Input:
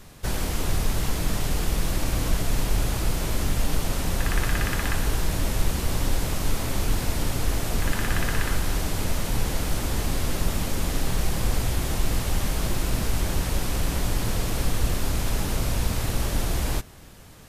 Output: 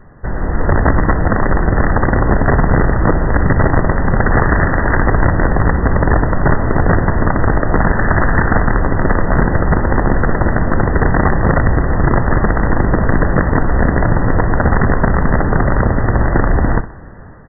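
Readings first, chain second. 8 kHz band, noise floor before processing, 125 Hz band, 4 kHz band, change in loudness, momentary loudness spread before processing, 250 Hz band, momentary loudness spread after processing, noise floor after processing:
under -40 dB, -44 dBFS, +13.0 dB, under -40 dB, +12.5 dB, 2 LU, +15.5 dB, 2 LU, -27 dBFS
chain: AGC gain up to 7.5 dB; wrapped overs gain 10 dB; brick-wall FIR low-pass 2000 Hz; on a send: feedback echo 63 ms, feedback 36%, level -15 dB; on the sum: gain +6 dB

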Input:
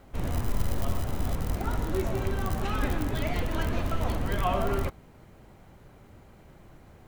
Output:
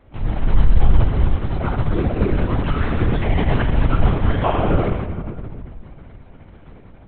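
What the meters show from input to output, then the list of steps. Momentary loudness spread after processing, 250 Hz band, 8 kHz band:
11 LU, +10.5 dB, under -30 dB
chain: AGC gain up to 3.5 dB; vibrato 10 Hz 11 cents; shoebox room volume 3500 m³, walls mixed, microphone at 3 m; LPC vocoder at 8 kHz whisper; gain -2.5 dB

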